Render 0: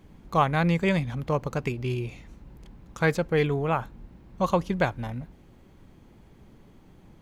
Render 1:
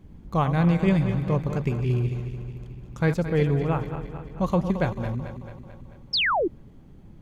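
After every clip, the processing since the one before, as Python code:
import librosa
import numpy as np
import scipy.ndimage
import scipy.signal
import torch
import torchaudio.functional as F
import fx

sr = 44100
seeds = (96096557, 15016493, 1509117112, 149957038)

y = fx.reverse_delay_fb(x, sr, ms=110, feedback_pct=76, wet_db=-10.0)
y = fx.low_shelf(y, sr, hz=360.0, db=11.5)
y = fx.spec_paint(y, sr, seeds[0], shape='fall', start_s=6.13, length_s=0.35, low_hz=300.0, high_hz=5500.0, level_db=-17.0)
y = F.gain(torch.from_numpy(y), -5.5).numpy()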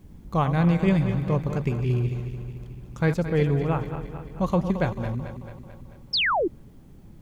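y = fx.quant_dither(x, sr, seeds[1], bits=12, dither='triangular')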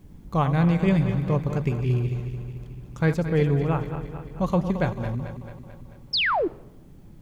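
y = fx.room_shoebox(x, sr, seeds[2], volume_m3=3500.0, walls='furnished', distance_m=0.35)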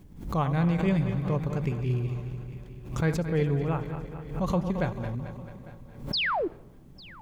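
y = fx.echo_feedback(x, sr, ms=850, feedback_pct=44, wet_db=-21.5)
y = fx.pre_swell(y, sr, db_per_s=97.0)
y = F.gain(torch.from_numpy(y), -4.5).numpy()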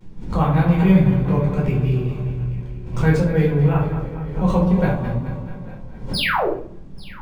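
y = fx.vibrato(x, sr, rate_hz=0.63, depth_cents=42.0)
y = fx.room_shoebox(y, sr, seeds[3], volume_m3=430.0, walls='furnished', distance_m=4.6)
y = np.interp(np.arange(len(y)), np.arange(len(y))[::3], y[::3])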